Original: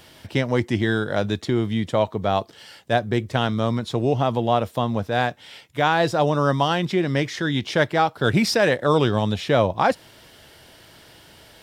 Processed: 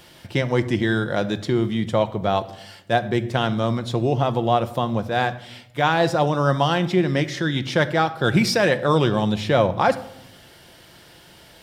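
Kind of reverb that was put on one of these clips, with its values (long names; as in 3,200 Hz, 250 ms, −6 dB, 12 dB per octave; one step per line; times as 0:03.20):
rectangular room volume 2,700 cubic metres, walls furnished, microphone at 0.88 metres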